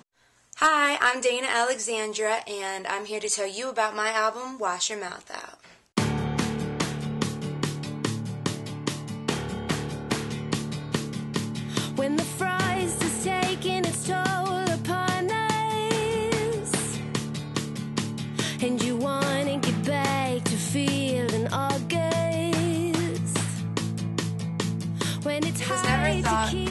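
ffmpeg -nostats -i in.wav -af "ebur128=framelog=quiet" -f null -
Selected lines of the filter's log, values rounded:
Integrated loudness:
  I:         -26.8 LUFS
  Threshold: -36.9 LUFS
Loudness range:
  LRA:         4.6 LU
  Threshold: -47.2 LUFS
  LRA low:   -30.2 LUFS
  LRA high:  -25.6 LUFS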